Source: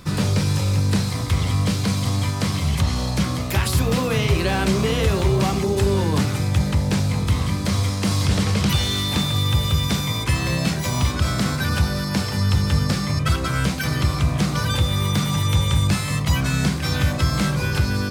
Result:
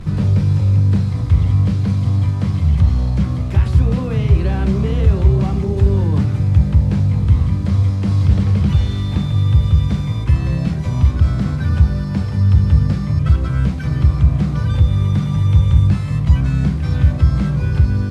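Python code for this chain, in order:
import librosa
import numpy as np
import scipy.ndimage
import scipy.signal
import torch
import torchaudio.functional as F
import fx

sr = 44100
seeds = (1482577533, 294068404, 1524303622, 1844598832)

y = fx.delta_mod(x, sr, bps=64000, step_db=-29.5)
y = fx.riaa(y, sr, side='playback')
y = y * librosa.db_to_amplitude(-6.0)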